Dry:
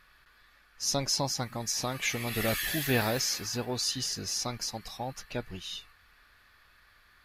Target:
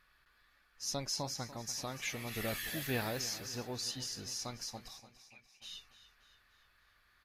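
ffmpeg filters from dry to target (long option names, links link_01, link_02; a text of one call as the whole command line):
ffmpeg -i in.wav -filter_complex "[0:a]asplit=3[link_01][link_02][link_03];[link_01]afade=type=out:start_time=4.98:duration=0.02[link_04];[link_02]bandpass=frequency=2400:width_type=q:width=13:csg=0,afade=type=in:start_time=4.98:duration=0.02,afade=type=out:start_time=5.61:duration=0.02[link_05];[link_03]afade=type=in:start_time=5.61:duration=0.02[link_06];[link_04][link_05][link_06]amix=inputs=3:normalize=0,aecho=1:1:291|582|873|1164|1455:0.188|0.0961|0.049|0.025|0.0127,volume=-8.5dB" out.wav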